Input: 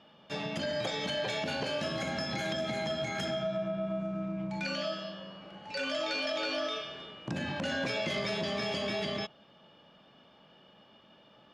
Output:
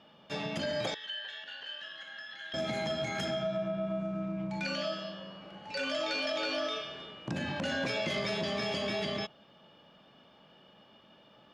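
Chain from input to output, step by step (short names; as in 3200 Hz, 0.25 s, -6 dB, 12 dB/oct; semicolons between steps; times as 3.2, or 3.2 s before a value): 0.94–2.54 double band-pass 2300 Hz, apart 0.76 oct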